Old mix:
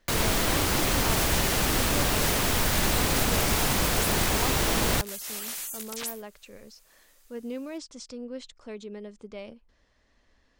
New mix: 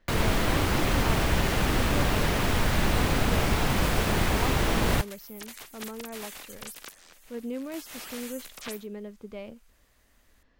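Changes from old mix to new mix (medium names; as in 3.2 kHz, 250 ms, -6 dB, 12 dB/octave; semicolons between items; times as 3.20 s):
second sound: entry +2.65 s; master: add tone controls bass +3 dB, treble -9 dB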